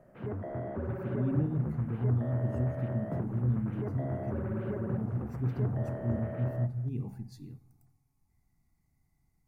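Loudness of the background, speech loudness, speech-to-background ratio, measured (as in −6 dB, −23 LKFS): −38.0 LKFS, −34.0 LKFS, 4.0 dB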